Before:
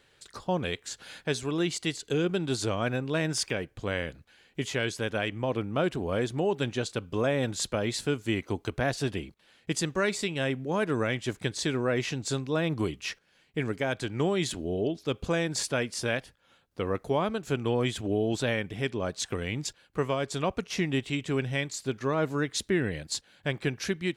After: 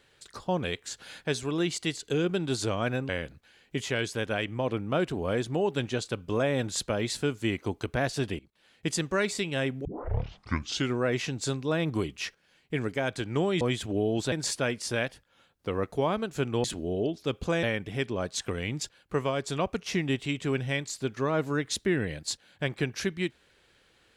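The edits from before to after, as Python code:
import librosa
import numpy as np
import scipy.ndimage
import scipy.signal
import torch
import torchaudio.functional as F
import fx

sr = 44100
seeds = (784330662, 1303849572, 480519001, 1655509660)

y = fx.edit(x, sr, fx.cut(start_s=3.09, length_s=0.84),
    fx.fade_in_from(start_s=9.23, length_s=0.49, curve='qsin', floor_db=-20.0),
    fx.tape_start(start_s=10.69, length_s=1.11),
    fx.swap(start_s=14.45, length_s=0.99, other_s=17.76, other_length_s=0.71), tone=tone)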